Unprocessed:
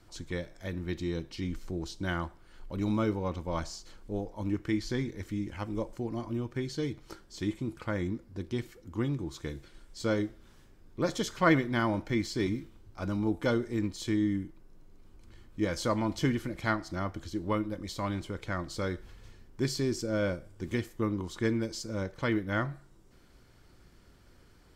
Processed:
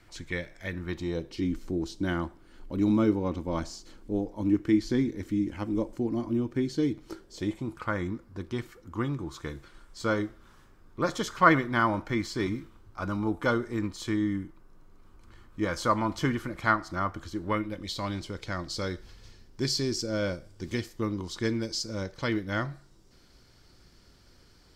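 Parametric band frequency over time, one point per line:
parametric band +9.5 dB 0.9 octaves
0:00.68 2,100 Hz
0:01.47 280 Hz
0:07.06 280 Hz
0:07.82 1,200 Hz
0:17.36 1,200 Hz
0:18.06 4,900 Hz

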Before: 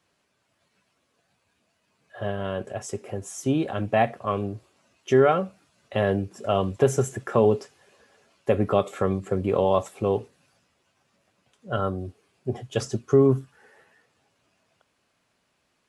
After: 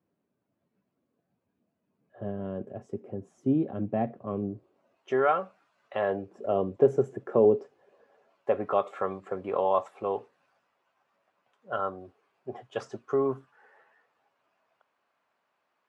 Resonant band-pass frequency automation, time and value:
resonant band-pass, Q 1.1
0:04.49 240 Hz
0:05.23 1,100 Hz
0:05.94 1,100 Hz
0:06.52 390 Hz
0:07.57 390 Hz
0:08.71 990 Hz

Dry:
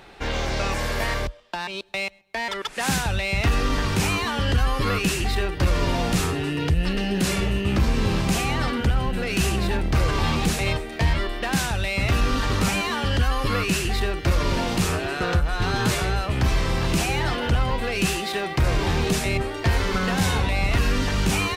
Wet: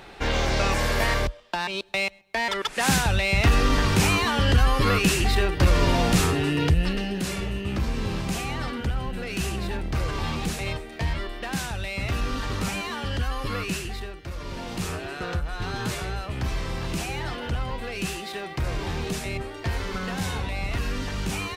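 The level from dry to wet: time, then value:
0:06.65 +2 dB
0:07.22 −6 dB
0:13.73 −6 dB
0:14.28 −15 dB
0:14.86 −7 dB

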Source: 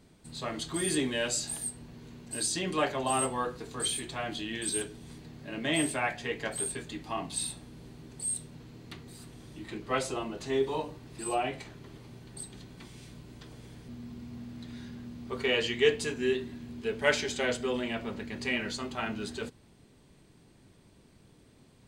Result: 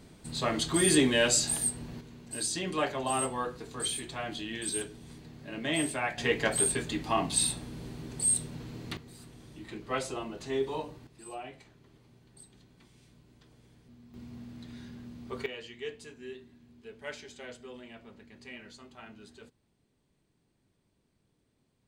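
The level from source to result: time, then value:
+6 dB
from 0:02.01 −1.5 dB
from 0:06.18 +6.5 dB
from 0:08.97 −2.5 dB
from 0:11.07 −11.5 dB
from 0:14.14 −2.5 dB
from 0:15.46 −15 dB

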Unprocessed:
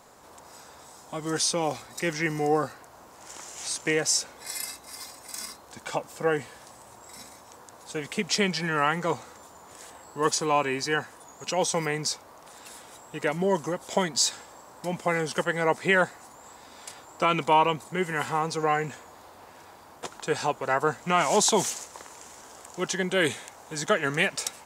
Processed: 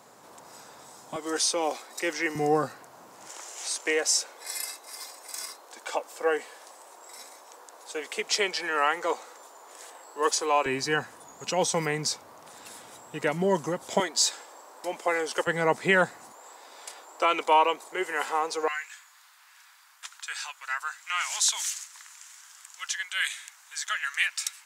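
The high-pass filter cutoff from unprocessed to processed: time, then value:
high-pass filter 24 dB per octave
110 Hz
from 0:01.16 310 Hz
from 0:02.35 120 Hz
from 0:03.30 360 Hz
from 0:10.66 86 Hz
from 0:14.00 330 Hz
from 0:15.47 110 Hz
from 0:16.32 360 Hz
from 0:18.68 1,400 Hz

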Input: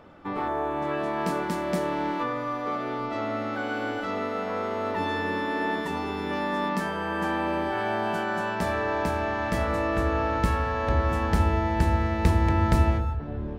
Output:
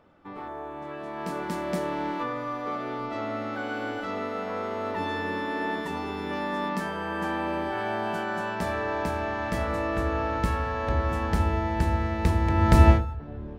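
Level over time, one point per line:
0:00.99 −9 dB
0:01.55 −2 dB
0:12.48 −2 dB
0:12.91 +7.5 dB
0:13.07 −5 dB

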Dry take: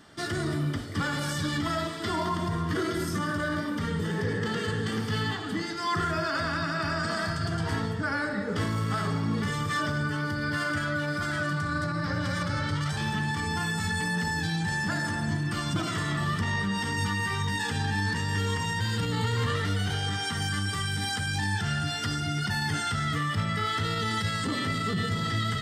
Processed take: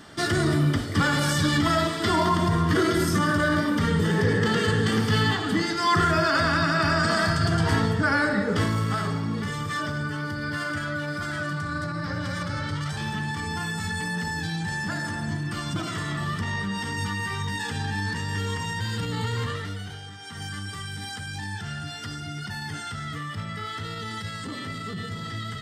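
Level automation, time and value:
0:08.33 +7 dB
0:09.33 −0.5 dB
0:19.38 −0.5 dB
0:20.17 −12.5 dB
0:20.43 −5 dB

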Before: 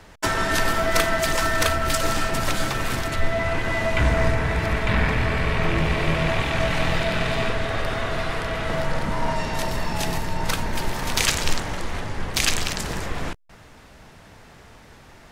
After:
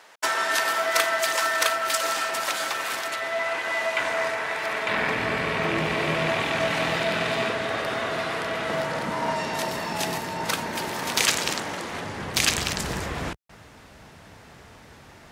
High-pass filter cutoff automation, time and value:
0:04.63 620 Hz
0:05.29 210 Hz
0:11.83 210 Hz
0:12.77 56 Hz

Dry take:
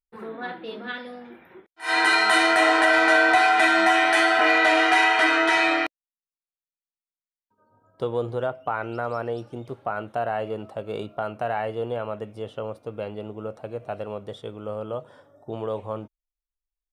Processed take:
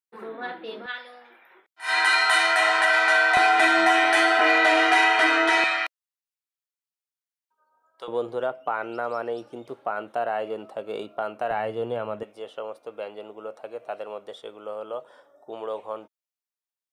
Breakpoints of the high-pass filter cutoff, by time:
270 Hz
from 0:00.86 800 Hz
from 0:03.37 250 Hz
from 0:05.64 970 Hz
from 0:08.08 280 Hz
from 0:11.51 130 Hz
from 0:12.23 460 Hz

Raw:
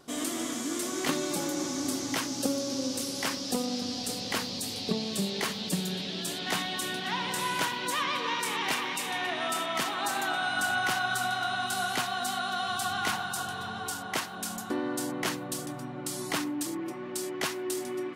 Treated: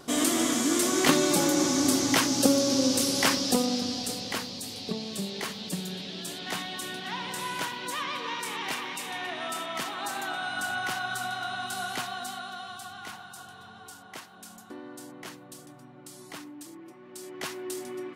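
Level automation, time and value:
0:03.33 +7.5 dB
0:04.56 −3 dB
0:12.07 −3 dB
0:12.93 −11.5 dB
0:17.02 −11.5 dB
0:17.53 −3 dB

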